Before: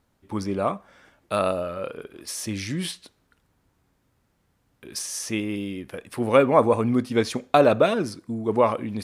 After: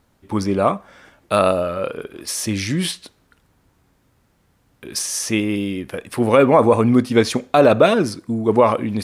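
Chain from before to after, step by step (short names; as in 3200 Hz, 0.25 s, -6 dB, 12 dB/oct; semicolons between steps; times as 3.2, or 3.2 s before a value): maximiser +8.5 dB; gain -1 dB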